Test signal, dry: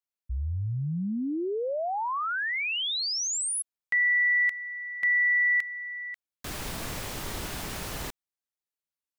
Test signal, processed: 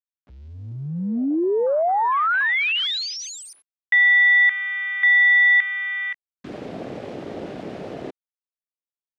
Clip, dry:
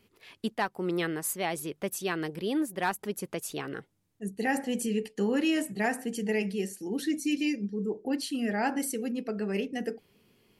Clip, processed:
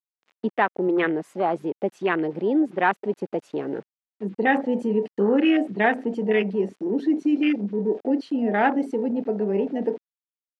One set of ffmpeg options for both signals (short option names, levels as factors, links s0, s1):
-filter_complex "[0:a]afwtdn=0.02,asplit=2[s0][s1];[s1]acompressor=threshold=0.0112:ratio=10:attack=0.11:release=31:detection=peak,volume=0.794[s2];[s0][s2]amix=inputs=2:normalize=0,aeval=exprs='val(0)*gte(abs(val(0)),0.002)':c=same,highpass=250,lowpass=3100,volume=2.66"